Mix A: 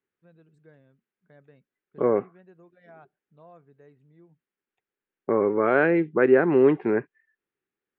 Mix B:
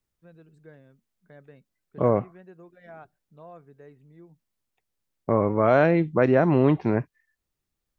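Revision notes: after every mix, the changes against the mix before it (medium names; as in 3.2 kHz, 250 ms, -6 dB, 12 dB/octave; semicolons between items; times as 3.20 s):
first voice +5.0 dB; second voice: remove cabinet simulation 250–2800 Hz, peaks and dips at 400 Hz +8 dB, 640 Hz -8 dB, 1 kHz -4 dB, 1.6 kHz +5 dB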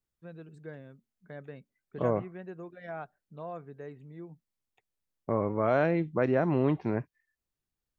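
first voice +5.5 dB; second voice -7.0 dB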